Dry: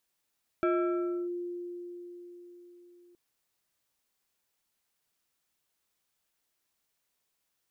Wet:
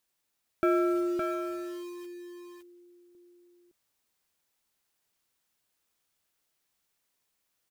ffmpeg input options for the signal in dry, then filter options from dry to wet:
-f lavfi -i "aevalsrc='0.0708*pow(10,-3*t/4.49)*sin(2*PI*351*t+0.96*clip(1-t/0.66,0,1)*sin(2*PI*2.81*351*t))':d=2.52:s=44100"
-filter_complex "[0:a]asplit=2[a][b];[b]acrusher=bits=6:mix=0:aa=0.000001,volume=-8dB[c];[a][c]amix=inputs=2:normalize=0,aecho=1:1:563:0.596"

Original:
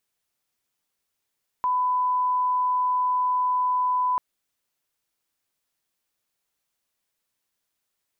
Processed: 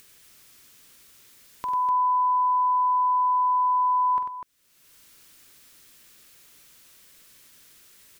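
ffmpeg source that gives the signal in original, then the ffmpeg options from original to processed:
-f lavfi -i "sine=f=1000:d=2.54:r=44100,volume=-1.94dB"
-af "equalizer=f=780:w=1.7:g=-9.5,acompressor=mode=upward:threshold=-35dB:ratio=2.5,aecho=1:1:46|95|248:0.316|0.447|0.422"

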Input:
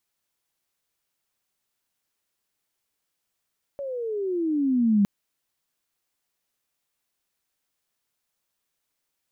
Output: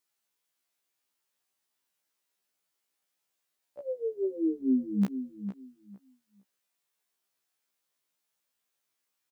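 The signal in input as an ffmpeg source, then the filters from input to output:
-f lavfi -i "aevalsrc='pow(10,(-15.5+14*(t/1.26-1))/20)*sin(2*PI*570*1.26/(-18.5*log(2)/12)*(exp(-18.5*log(2)/12*t/1.26)-1))':d=1.26:s=44100"
-filter_complex "[0:a]highpass=f=240:p=1,asplit=2[a][b];[b]adelay=455,lowpass=f=1.5k:p=1,volume=-10dB,asplit=2[c][d];[d]adelay=455,lowpass=f=1.5k:p=1,volume=0.21,asplit=2[e][f];[f]adelay=455,lowpass=f=1.5k:p=1,volume=0.21[g];[a][c][e][g]amix=inputs=4:normalize=0,afftfilt=real='re*1.73*eq(mod(b,3),0)':imag='im*1.73*eq(mod(b,3),0)':win_size=2048:overlap=0.75"

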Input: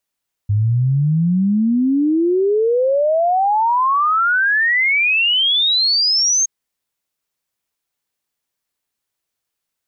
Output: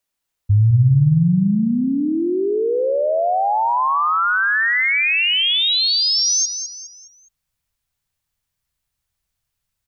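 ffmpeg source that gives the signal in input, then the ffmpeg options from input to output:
-f lavfi -i "aevalsrc='0.237*clip(min(t,5.97-t)/0.01,0,1)*sin(2*PI*100*5.97/log(6500/100)*(exp(log(6500/100)*t/5.97)-1))':d=5.97:s=44100"
-filter_complex "[0:a]asubboost=boost=12:cutoff=96,acrossover=split=200[a][b];[b]acompressor=threshold=-18dB:ratio=2[c];[a][c]amix=inputs=2:normalize=0,asplit=2[d][e];[e]aecho=0:1:207|414|621|828:0.355|0.138|0.054|0.021[f];[d][f]amix=inputs=2:normalize=0"

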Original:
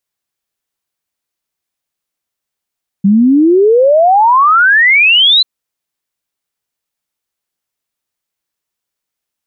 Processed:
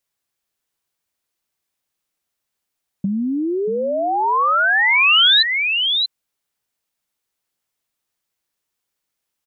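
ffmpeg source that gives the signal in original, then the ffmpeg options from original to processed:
-f lavfi -i "aevalsrc='0.596*clip(min(t,2.39-t)/0.01,0,1)*sin(2*PI*190*2.39/log(4100/190)*(exp(log(4100/190)*t/2.39)-1))':d=2.39:s=44100"
-filter_complex "[0:a]aecho=1:1:631:0.299,acrossover=split=1500|3400[a][b][c];[a]acompressor=threshold=-23dB:ratio=4[d];[b]acompressor=threshold=-21dB:ratio=4[e];[c]acompressor=threshold=-16dB:ratio=4[f];[d][e][f]amix=inputs=3:normalize=0"

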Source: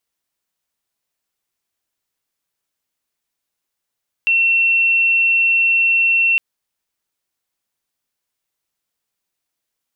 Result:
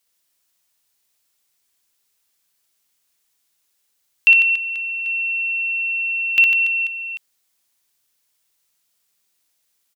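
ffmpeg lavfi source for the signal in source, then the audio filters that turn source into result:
-f lavfi -i "sine=f=2710:d=2.11:r=44100,volume=6.56dB"
-filter_complex "[0:a]highshelf=f=2.2k:g=9.5,asplit=2[a][b];[b]aecho=0:1:60|150|285|487.5|791.2:0.631|0.398|0.251|0.158|0.1[c];[a][c]amix=inputs=2:normalize=0"

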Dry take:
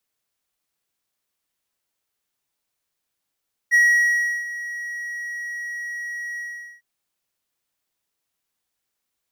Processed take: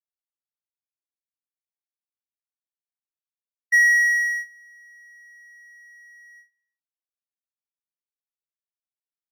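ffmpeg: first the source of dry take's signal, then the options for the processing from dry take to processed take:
-f lavfi -i "aevalsrc='0.335*(1-4*abs(mod(1910*t+0.25,1)-0.5))':d=3.103:s=44100,afade=t=in:d=0.032,afade=t=out:st=0.032:d=0.702:silence=0.15,afade=t=out:st=2.67:d=0.433"
-af "agate=range=-43dB:threshold=-28dB:ratio=16:detection=peak"

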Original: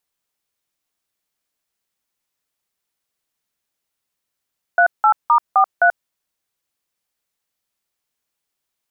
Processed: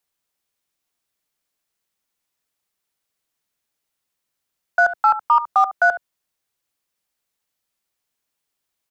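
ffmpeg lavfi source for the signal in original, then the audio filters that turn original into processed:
-f lavfi -i "aevalsrc='0.251*clip(min(mod(t,0.259),0.085-mod(t,0.259))/0.002,0,1)*(eq(floor(t/0.259),0)*(sin(2*PI*697*mod(t,0.259))+sin(2*PI*1477*mod(t,0.259)))+eq(floor(t/0.259),1)*(sin(2*PI*852*mod(t,0.259))+sin(2*PI*1336*mod(t,0.259)))+eq(floor(t/0.259),2)*(sin(2*PI*941*mod(t,0.259))+sin(2*PI*1209*mod(t,0.259)))+eq(floor(t/0.259),3)*(sin(2*PI*770*mod(t,0.259))+sin(2*PI*1209*mod(t,0.259)))+eq(floor(t/0.259),4)*(sin(2*PI*697*mod(t,0.259))+sin(2*PI*1477*mod(t,0.259))))':d=1.295:s=44100"
-filter_complex "[0:a]aecho=1:1:70:0.188,acrossover=split=130|380|540[a][b][c][d];[c]aeval=exprs='0.0106*(abs(mod(val(0)/0.0106+3,4)-2)-1)':c=same[e];[a][b][e][d]amix=inputs=4:normalize=0"

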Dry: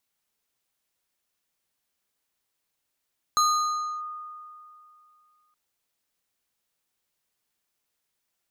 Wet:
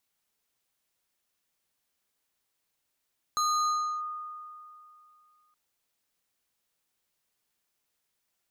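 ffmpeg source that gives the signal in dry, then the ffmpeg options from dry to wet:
-f lavfi -i "aevalsrc='0.141*pow(10,-3*t/2.63)*sin(2*PI*1230*t+0.72*clip(1-t/0.65,0,1)*sin(2*PI*4.31*1230*t))':d=2.17:s=44100"
-af "alimiter=limit=-24dB:level=0:latency=1"

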